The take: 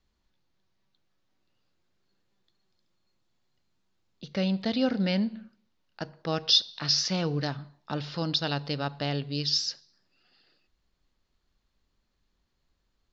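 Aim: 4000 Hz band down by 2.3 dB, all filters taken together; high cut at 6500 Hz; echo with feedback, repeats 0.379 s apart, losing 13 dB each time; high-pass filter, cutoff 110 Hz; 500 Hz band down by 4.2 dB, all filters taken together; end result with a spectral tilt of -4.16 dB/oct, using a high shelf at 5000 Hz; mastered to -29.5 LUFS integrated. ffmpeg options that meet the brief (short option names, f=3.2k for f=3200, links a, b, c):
-af "highpass=110,lowpass=6.5k,equalizer=f=500:t=o:g=-5,equalizer=f=4k:t=o:g=-5,highshelf=f=5k:g=6,aecho=1:1:379|758|1137:0.224|0.0493|0.0108,volume=0.5dB"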